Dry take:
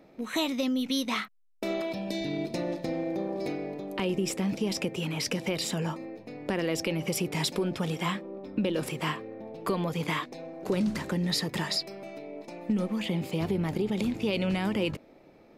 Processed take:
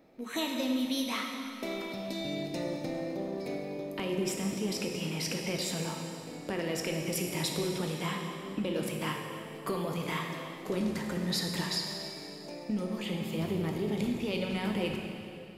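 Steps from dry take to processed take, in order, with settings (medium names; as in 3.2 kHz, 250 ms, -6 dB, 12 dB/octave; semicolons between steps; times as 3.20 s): treble shelf 8.5 kHz +5.5 dB; plate-style reverb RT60 2.6 s, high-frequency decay 0.95×, DRR 1 dB; trim -5.5 dB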